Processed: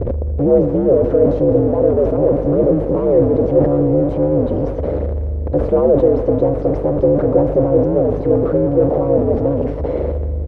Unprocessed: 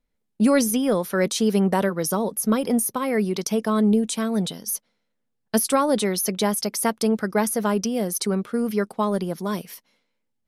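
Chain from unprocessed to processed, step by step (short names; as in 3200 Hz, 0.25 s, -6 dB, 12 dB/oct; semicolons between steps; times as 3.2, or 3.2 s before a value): delta modulation 64 kbps, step -18.5 dBFS; in parallel at +3 dB: limiter -14.5 dBFS, peak gain reduction 7.5 dB; on the sum: ring modulator 74 Hz; buzz 50 Hz, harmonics 14, -31 dBFS -8 dB/oct; soft clip -15 dBFS, distortion -11 dB; synth low-pass 510 Hz, resonance Q 4.7; on a send: feedback echo 0.2 s, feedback 57%, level -18 dB; on the sum: Schroeder reverb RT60 2.6 s, combs from 31 ms, DRR 15.5 dB; sustainer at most 66 dB/s; gain +1 dB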